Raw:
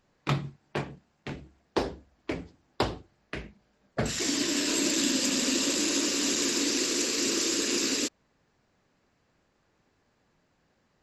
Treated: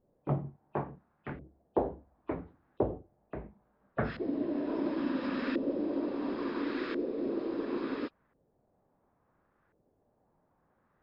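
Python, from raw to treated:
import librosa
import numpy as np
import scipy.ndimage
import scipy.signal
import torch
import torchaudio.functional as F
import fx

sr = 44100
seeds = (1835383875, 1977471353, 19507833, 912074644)

y = fx.freq_compress(x, sr, knee_hz=2400.0, ratio=1.5)
y = fx.filter_lfo_lowpass(y, sr, shape='saw_up', hz=0.72, low_hz=510.0, high_hz=1600.0, q=1.8)
y = y * librosa.db_to_amplitude(-3.5)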